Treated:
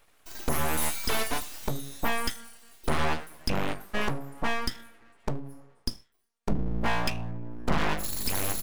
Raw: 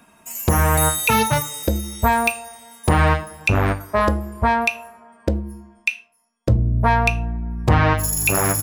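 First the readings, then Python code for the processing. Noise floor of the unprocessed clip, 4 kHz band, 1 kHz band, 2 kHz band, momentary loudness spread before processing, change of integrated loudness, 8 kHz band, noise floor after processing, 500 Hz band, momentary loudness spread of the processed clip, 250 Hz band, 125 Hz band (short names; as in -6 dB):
-58 dBFS, -4.5 dB, -13.0 dB, -11.0 dB, 11 LU, -12.0 dB, -11.5 dB, -66 dBFS, -11.5 dB, 11 LU, -10.0 dB, -16.0 dB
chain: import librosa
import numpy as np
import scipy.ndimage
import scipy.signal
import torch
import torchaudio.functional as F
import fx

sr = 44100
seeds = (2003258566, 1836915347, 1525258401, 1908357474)

y = np.abs(x)
y = y * 10.0 ** (-8.0 / 20.0)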